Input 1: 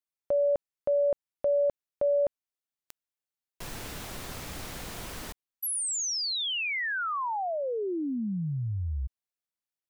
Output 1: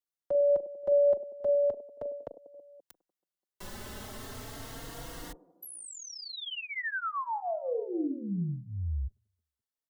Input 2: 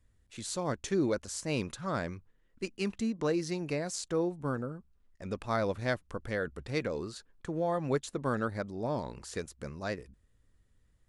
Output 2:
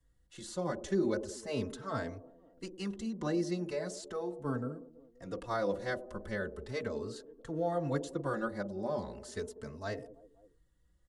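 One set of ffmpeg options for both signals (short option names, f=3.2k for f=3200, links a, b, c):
-filter_complex "[0:a]bandreject=f=2.4k:w=5.6,acrossover=split=220|690|2700[a][b][c][d];[b]aecho=1:1:40|100|190|325|527.5:0.631|0.398|0.251|0.158|0.1[e];[d]acompressor=threshold=-43dB:ratio=6:attack=13:release=53:knee=6[f];[a][e][c][f]amix=inputs=4:normalize=0,asplit=2[g][h];[h]adelay=3.8,afreqshift=0.38[i];[g][i]amix=inputs=2:normalize=1"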